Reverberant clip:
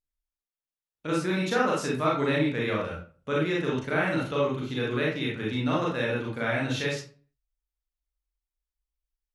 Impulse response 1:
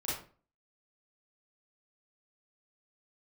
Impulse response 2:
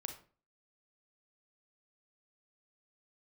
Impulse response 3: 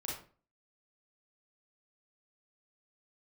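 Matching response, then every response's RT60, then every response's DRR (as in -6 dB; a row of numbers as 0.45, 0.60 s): 3; 0.40, 0.40, 0.40 s; -9.0, 5.0, -4.5 dB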